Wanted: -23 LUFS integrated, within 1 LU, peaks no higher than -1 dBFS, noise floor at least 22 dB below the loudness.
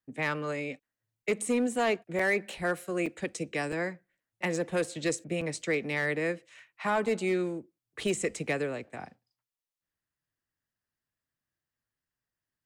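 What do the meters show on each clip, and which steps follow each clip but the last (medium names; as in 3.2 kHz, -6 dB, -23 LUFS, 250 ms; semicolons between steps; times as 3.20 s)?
clipped samples 0.4%; clipping level -21.0 dBFS; dropouts 6; longest dropout 4.3 ms; loudness -31.5 LUFS; peak level -21.0 dBFS; loudness target -23.0 LUFS
-> clip repair -21 dBFS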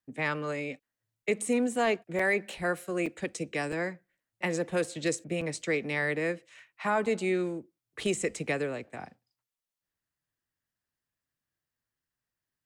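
clipped samples 0.0%; dropouts 6; longest dropout 4.3 ms
-> interpolate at 2.19/3.06/3.72/4.84/5.41/7.06 s, 4.3 ms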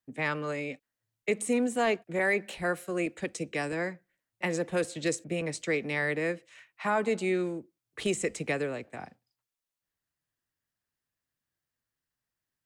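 dropouts 0; loudness -31.0 LUFS; peak level -17.0 dBFS; loudness target -23.0 LUFS
-> trim +8 dB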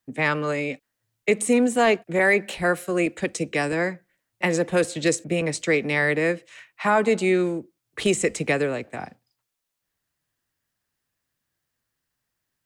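loudness -23.0 LUFS; peak level -9.0 dBFS; noise floor -81 dBFS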